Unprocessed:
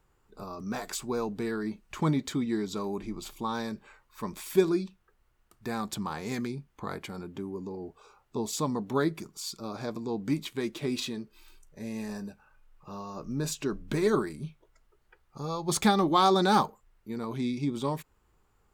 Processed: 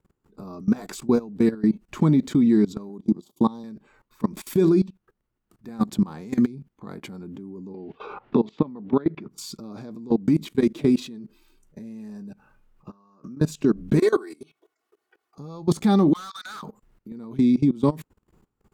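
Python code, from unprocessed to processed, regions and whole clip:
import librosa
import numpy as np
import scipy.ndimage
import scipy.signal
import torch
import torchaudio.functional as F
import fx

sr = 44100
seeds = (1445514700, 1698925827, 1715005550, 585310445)

y = fx.chain(x, sr, fx.highpass(hz=120.0, slope=12),
    fx.band_shelf(hz=1900.0, db=-15.5, octaves=1.2),
    fx.transient(attack_db=6, sustain_db=-12), at=(2.89, 3.64))
y = fx.chain(y, sr, fx.lowpass(hz=3100.0, slope=24),
    fx.low_shelf(hz=220.0, db=-9.0),
    fx.band_squash(depth_pct=100), at=(7.74, 9.31))
y = fx.chain(y, sr, fx.highpass(hz=230.0, slope=6),
    fx.band_shelf(hz=1300.0, db=9.0, octaves=1.0),
    fx.level_steps(step_db=17), at=(12.9, 13.41))
y = fx.chain(y, sr, fx.highpass(hz=550.0, slope=12),
    fx.comb(ms=2.7, depth=0.84), at=(13.99, 15.38))
y = fx.chain(y, sr, fx.ellip_highpass(hz=1300.0, order=4, stop_db=70),
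    fx.tilt_eq(slope=-2.0),
    fx.overload_stage(gain_db=34.0), at=(16.13, 16.63))
y = fx.peak_eq(y, sr, hz=220.0, db=13.5, octaves=2.0)
y = fx.level_steps(y, sr, step_db=21)
y = F.gain(torch.from_numpy(y), 4.5).numpy()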